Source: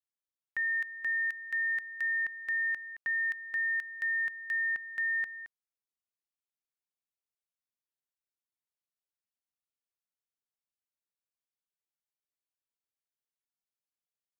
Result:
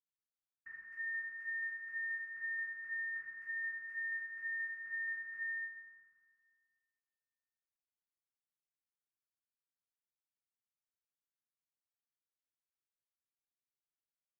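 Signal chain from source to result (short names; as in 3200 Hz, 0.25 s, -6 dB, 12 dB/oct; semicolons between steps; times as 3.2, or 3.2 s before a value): LPF 2300 Hz 6 dB/oct; fixed phaser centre 1500 Hz, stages 4; reverb RT60 2.0 s, pre-delay 93 ms, DRR -60 dB; gain +3 dB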